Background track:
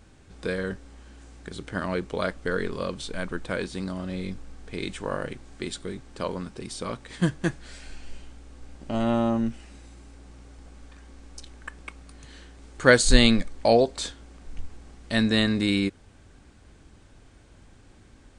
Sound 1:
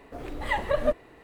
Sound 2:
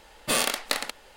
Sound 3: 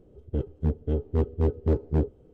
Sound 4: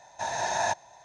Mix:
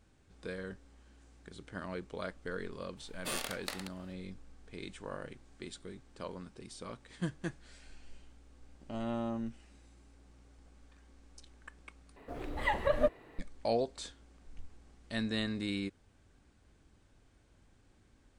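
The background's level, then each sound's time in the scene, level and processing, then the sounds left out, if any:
background track -12.5 dB
2.97 add 2 -13.5 dB
12.16 replace with 1 -4 dB + high shelf 8200 Hz -4 dB
not used: 3, 4

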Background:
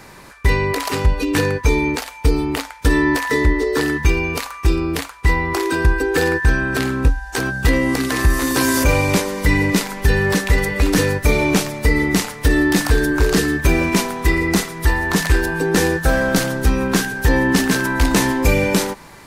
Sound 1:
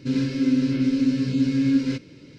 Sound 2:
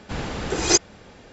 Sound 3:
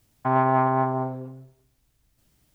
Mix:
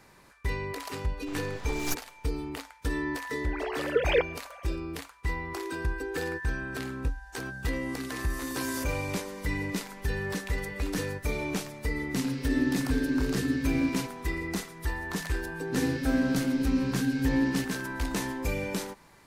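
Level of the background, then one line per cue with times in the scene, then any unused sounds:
background -15.5 dB
1.17 add 2 -12.5 dB + full-wave rectifier
3.44 add 2 -5 dB + sine-wave speech
12.09 add 1 -8 dB
15.67 add 1 -6.5 dB
not used: 3

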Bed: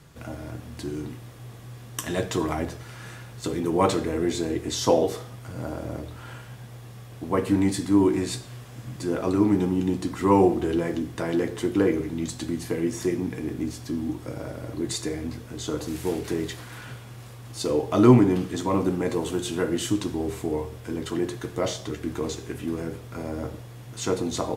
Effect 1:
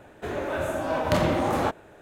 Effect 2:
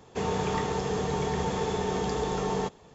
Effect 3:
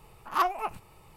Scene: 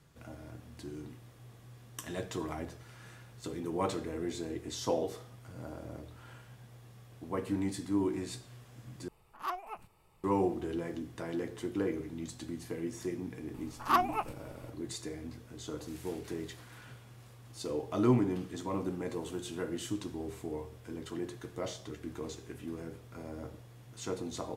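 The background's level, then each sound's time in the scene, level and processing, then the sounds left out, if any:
bed -11.5 dB
9.08 replace with 3 -11.5 dB
13.54 add 3 -1.5 dB
not used: 1, 2

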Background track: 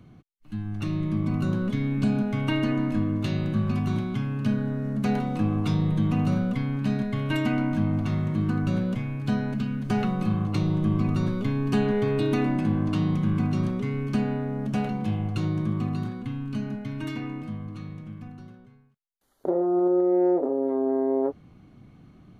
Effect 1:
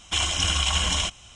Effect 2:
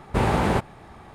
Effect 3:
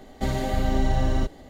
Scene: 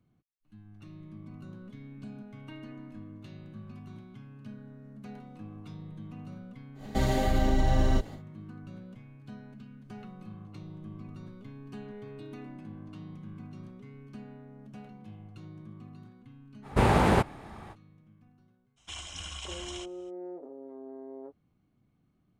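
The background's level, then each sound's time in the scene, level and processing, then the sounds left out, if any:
background track -20 dB
6.74 add 3 -14.5 dB, fades 0.10 s + maximiser +14.5 dB
16.62 add 2 -1 dB, fades 0.05 s
18.76 add 1 -17.5 dB, fades 0.02 s

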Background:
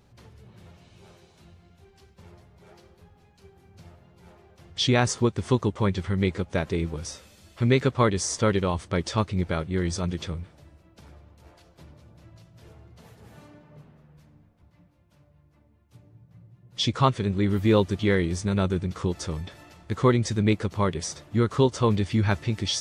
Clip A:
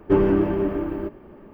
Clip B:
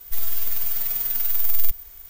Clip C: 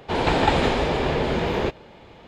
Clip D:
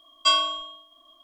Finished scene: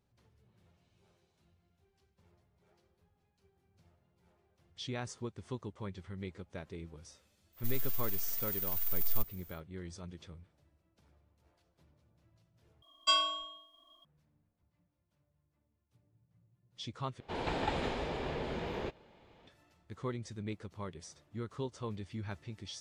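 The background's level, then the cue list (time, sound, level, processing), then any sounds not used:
background -18.5 dB
7.52 add B -12 dB, fades 0.10 s
12.82 replace with D -8 dB + bell 68 Hz +8 dB 1.1 oct
17.2 replace with C -15 dB
not used: A

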